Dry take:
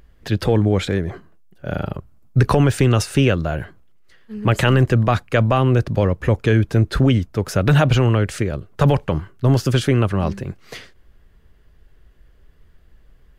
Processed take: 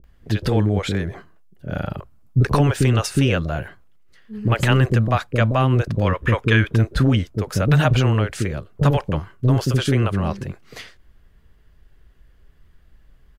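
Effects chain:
multiband delay without the direct sound lows, highs 40 ms, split 450 Hz
gain on a spectral selection 0:06.07–0:06.76, 910–3,800 Hz +8 dB
level −1 dB

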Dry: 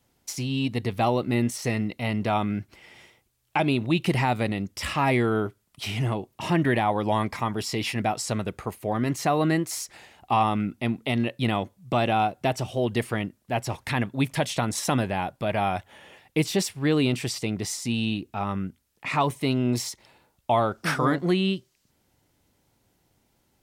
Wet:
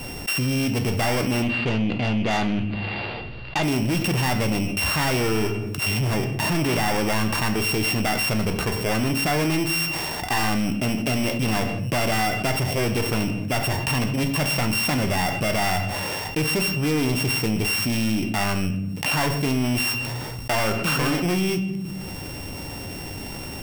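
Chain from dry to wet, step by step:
samples sorted by size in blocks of 16 samples
0:01.42–0:03.63: Chebyshev low-pass filter 4,800 Hz, order 10
soft clipping −25 dBFS, distortion −9 dB
rectangular room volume 78 cubic metres, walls mixed, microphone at 0.31 metres
envelope flattener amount 70%
level +3.5 dB

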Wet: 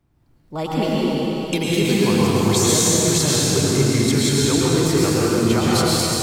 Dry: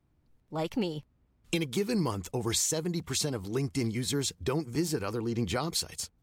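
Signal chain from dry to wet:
dense smooth reverb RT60 4.1 s, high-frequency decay 0.95×, pre-delay 95 ms, DRR −7.5 dB
level +6 dB

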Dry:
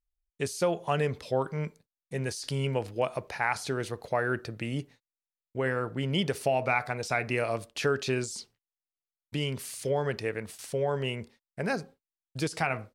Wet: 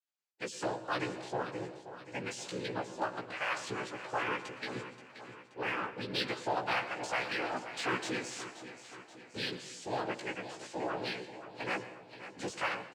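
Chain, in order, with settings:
spectral magnitudes quantised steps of 30 dB
high-pass filter 610 Hz 6 dB per octave
high-shelf EQ 5,400 Hz −7 dB
cochlear-implant simulation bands 8
in parallel at −7 dB: soft clipping −37.5 dBFS, distortion −6 dB
on the sum: double-tracking delay 16 ms −3 dB
repeating echo 528 ms, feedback 53%, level −12.5 dB
convolution reverb RT60 0.80 s, pre-delay 99 ms, DRR 14.5 dB
level −5 dB

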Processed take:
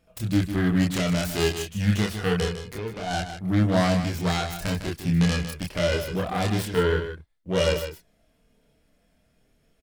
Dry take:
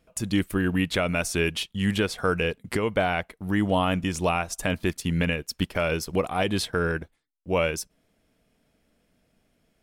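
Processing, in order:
phase distortion by the signal itself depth 0.23 ms
0:02.45–0:03.11: downward compressor 4 to 1, threshold −32 dBFS, peak gain reduction 11 dB
harmonic and percussive parts rebalanced harmonic +9 dB
multi-voice chorus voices 6, 0.27 Hz, delay 28 ms, depth 1.5 ms
on a send: single-tap delay 154 ms −9.5 dB
on the sum: level −2 dB

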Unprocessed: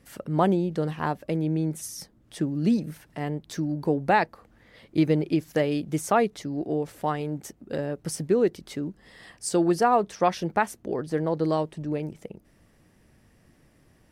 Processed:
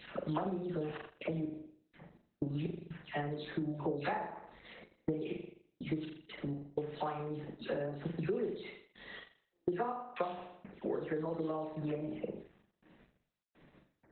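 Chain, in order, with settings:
every frequency bin delayed by itself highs early, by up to 242 ms
low-shelf EQ 94 Hz −11.5 dB
gate pattern "xxxx.x..x.x.xxxx" 62 BPM −60 dB
mains-hum notches 60/120/180 Hz
on a send: flutter between parallel walls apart 7.2 metres, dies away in 0.49 s
on the sum: bad sample-rate conversion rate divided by 2×, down filtered, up zero stuff
downward compressor 8 to 1, threshold −30 dBFS, peak gain reduction 19 dB
level +2 dB
Opus 8 kbit/s 48,000 Hz

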